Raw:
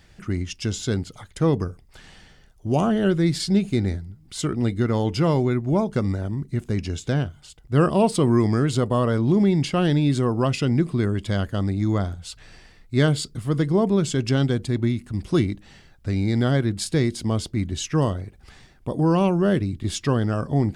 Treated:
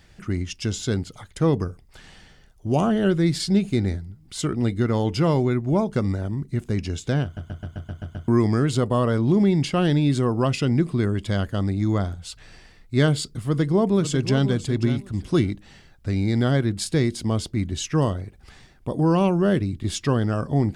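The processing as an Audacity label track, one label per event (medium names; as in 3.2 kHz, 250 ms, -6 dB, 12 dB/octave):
7.240000	7.240000	stutter in place 0.13 s, 8 plays
13.390000	14.460000	echo throw 540 ms, feedback 15%, level -11 dB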